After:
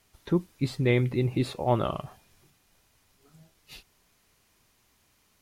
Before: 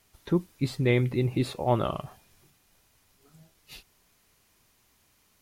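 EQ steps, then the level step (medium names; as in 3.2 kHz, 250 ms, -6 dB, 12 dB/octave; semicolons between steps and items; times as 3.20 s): treble shelf 11 kHz -4.5 dB; 0.0 dB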